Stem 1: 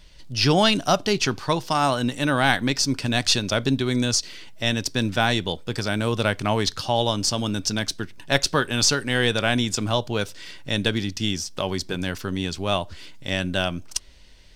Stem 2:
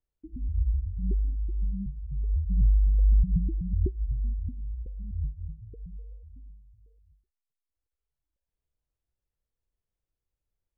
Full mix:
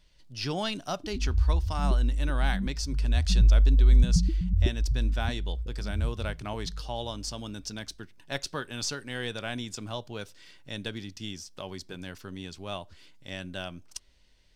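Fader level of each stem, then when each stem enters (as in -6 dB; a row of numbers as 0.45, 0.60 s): -13.0, +2.5 dB; 0.00, 0.80 s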